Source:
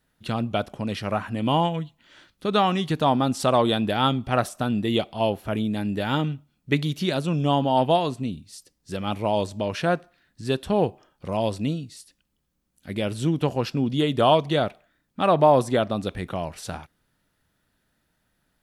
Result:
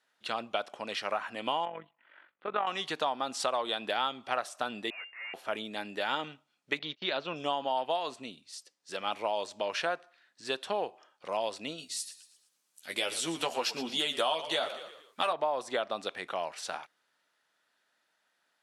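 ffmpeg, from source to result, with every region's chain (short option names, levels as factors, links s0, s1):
-filter_complex "[0:a]asettb=1/sr,asplit=3[s0][s1][s2];[s0]atrim=end=1.654[s3];[s1]atrim=start=1.65:end=2.67,asetpts=PTS-STARTPTS,afade=t=in:d=0.004:c=qsin,afade=t=out:st=1.016:d=0.004:c=qsin,lowpass=f=2300:w=0.5412,lowpass=f=2300:w=1.3066,tremolo=f=47:d=0.667[s4];[s2]atrim=start=2.666[s5];[s3][s4]acrossfade=d=0.004:c1=hsin:c2=qsin[s6];[s6][s5]acrossfade=d=0.004:c1=qsin:c2=hsin,asettb=1/sr,asplit=3[s7][s8][s9];[s7]atrim=end=4.904[s10];[s8]atrim=start=4.9:end=5.34,asetpts=PTS-STARTPTS,afade=t=in:d=0.004:c=qsin,afade=t=out:st=0.436:d=0.004:c=qsin,bandpass=f=2200:t=q:w=0.77,aeval=exprs='(tanh(89.1*val(0)+0.7)-tanh(0.7))/89.1':c=same,lowpass=f=2400:t=q:w=0.5098,lowpass=f=2400:t=q:w=0.6013,lowpass=f=2400:t=q:w=0.9,lowpass=f=2400:t=q:w=2.563,afreqshift=-2800[s11];[s9]atrim=start=5.336[s12];[s10][s11]acrossfade=d=0.004:c1=hsin:c2=qsin[s13];[s13][s12]acrossfade=d=0.004:c1=qsin:c2=hsin,asettb=1/sr,asplit=3[s14][s15][s16];[s14]atrim=end=6.794[s17];[s15]atrim=start=6.79:end=7.36,asetpts=PTS-STARTPTS,afade=t=in:d=0.004:c=qsin,afade=t=out:st=0.566:d=0.004:c=qsin,agate=range=0.0447:threshold=0.0251:ratio=16:release=100:detection=peak,lowpass=f=4300:w=0.5412,lowpass=f=4300:w=1.3066[s18];[s16]atrim=start=7.356[s19];[s17][s18]acrossfade=d=0.004:c1=hsin:c2=qsin[s20];[s20][s19]acrossfade=d=0.004:c1=qsin:c2=hsin,asettb=1/sr,asplit=3[s21][s22][s23];[s21]atrim=end=11.784[s24];[s22]atrim=start=11.78:end=15.33,asetpts=PTS-STARTPTS,afade=t=in:d=0.004:c=qsin,afade=t=out:st=3.546:d=0.004:c=qsin,aemphasis=mode=production:type=75kf,asplit=2[s25][s26];[s26]adelay=12,volume=0.562[s27];[s25][s27]amix=inputs=2:normalize=0,atrim=end_sample=156555,asplit=5[s28][s29][s30][s31][s32];[s29]adelay=115,afreqshift=-45,volume=0.178[s33];[s30]adelay=230,afreqshift=-90,volume=0.0804[s34];[s31]adelay=345,afreqshift=-135,volume=0.0359[s35];[s32]adelay=460,afreqshift=-180,volume=0.0162[s36];[s28][s33][s34][s35][s36]amix=inputs=5:normalize=0,atrim=end_sample=156555[s37];[s23]atrim=start=15.326[s38];[s24][s37]acrossfade=d=0.004:c1=hsin:c2=qsin[s39];[s39][s38]acrossfade=d=0.004:c1=qsin:c2=hsin,highpass=650,acompressor=threshold=0.0447:ratio=6,lowpass=7800"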